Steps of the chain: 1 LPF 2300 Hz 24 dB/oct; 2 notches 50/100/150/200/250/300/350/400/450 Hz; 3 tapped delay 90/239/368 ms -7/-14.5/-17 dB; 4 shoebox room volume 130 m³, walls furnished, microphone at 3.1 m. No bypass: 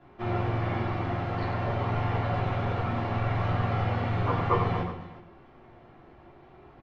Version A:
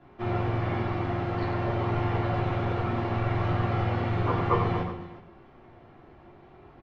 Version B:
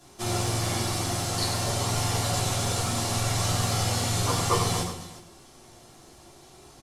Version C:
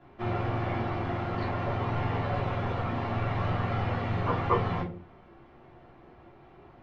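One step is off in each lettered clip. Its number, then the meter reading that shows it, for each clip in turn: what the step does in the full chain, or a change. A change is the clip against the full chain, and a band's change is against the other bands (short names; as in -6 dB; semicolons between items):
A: 2, 250 Hz band +2.5 dB; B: 1, 4 kHz band +16.5 dB; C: 3, 125 Hz band -1.5 dB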